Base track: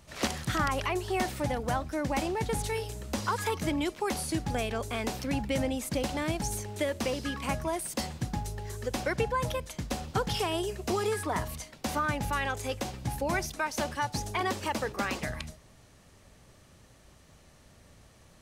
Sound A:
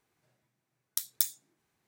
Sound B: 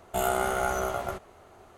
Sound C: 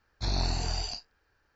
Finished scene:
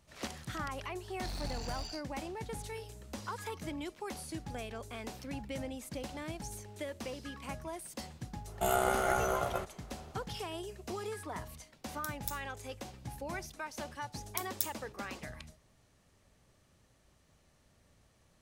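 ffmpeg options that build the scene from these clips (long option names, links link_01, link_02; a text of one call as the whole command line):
ffmpeg -i bed.wav -i cue0.wav -i cue1.wav -i cue2.wav -filter_complex "[1:a]asplit=2[link_01][link_02];[0:a]volume=-10.5dB[link_03];[3:a]asoftclip=type=hard:threshold=-29dB,atrim=end=1.55,asetpts=PTS-STARTPTS,volume=-8dB,afade=type=in:duration=0.004:curve=hsin,afade=type=out:start_time=1.546:duration=0.004:curve=hsin,adelay=1010[link_04];[2:a]atrim=end=1.77,asetpts=PTS-STARTPTS,volume=-3dB,afade=type=in:duration=0.004:curve=hsin,afade=type=out:start_time=1.766:duration=0.004:curve=hsin,adelay=8470[link_05];[link_01]atrim=end=1.87,asetpts=PTS-STARTPTS,volume=-12dB,afade=type=in:duration=0.004:curve=hsin,afade=type=out:start_time=1.866:duration=0.004:curve=hsin,adelay=11070[link_06];[link_02]atrim=end=1.87,asetpts=PTS-STARTPTS,volume=-6.5dB,afade=type=in:duration=0.004:curve=hsin,afade=type=out:start_time=1.866:duration=0.004:curve=hsin,adelay=13400[link_07];[link_03][link_04][link_05][link_06][link_07]amix=inputs=5:normalize=0" out.wav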